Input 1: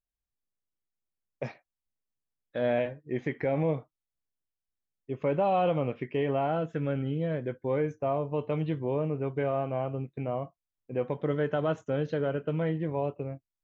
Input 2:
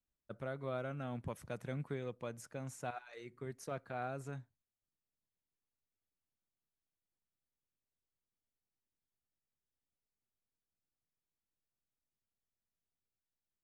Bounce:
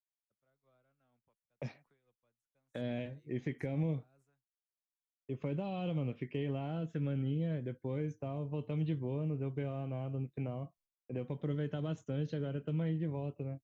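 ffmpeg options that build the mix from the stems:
ffmpeg -i stem1.wav -i stem2.wav -filter_complex "[0:a]adelay=200,volume=-2dB[link_01];[1:a]acrossover=split=210|570[link_02][link_03][link_04];[link_02]acompressor=threshold=-53dB:ratio=4[link_05];[link_03]acompressor=threshold=-53dB:ratio=4[link_06];[link_04]acompressor=threshold=-47dB:ratio=4[link_07];[link_05][link_06][link_07]amix=inputs=3:normalize=0,alimiter=level_in=15dB:limit=-24dB:level=0:latency=1:release=450,volume=-15dB,volume=-18.5dB[link_08];[link_01][link_08]amix=inputs=2:normalize=0,agate=range=-33dB:threshold=-59dB:ratio=3:detection=peak,acrossover=split=290|3000[link_09][link_10][link_11];[link_10]acompressor=threshold=-45dB:ratio=6[link_12];[link_09][link_12][link_11]amix=inputs=3:normalize=0" out.wav

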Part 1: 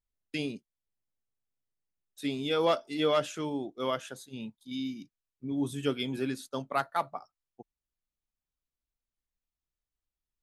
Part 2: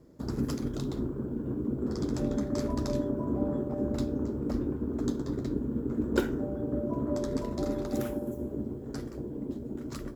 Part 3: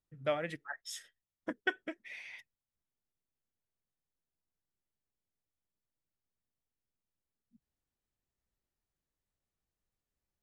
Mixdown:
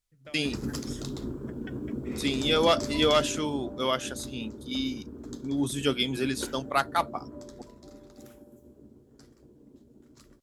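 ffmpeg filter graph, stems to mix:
ffmpeg -i stem1.wav -i stem2.wav -i stem3.wav -filter_complex "[0:a]volume=2.5dB[link_01];[1:a]adelay=250,volume=-3dB,afade=type=out:start_time=3.01:duration=0.75:silence=0.421697,afade=type=out:start_time=7.02:duration=0.78:silence=0.398107[link_02];[2:a]acompressor=threshold=-36dB:ratio=6,volume=-10dB[link_03];[link_01][link_02][link_03]amix=inputs=3:normalize=0,equalizer=frequency=6600:width=0.34:gain=8.5" out.wav

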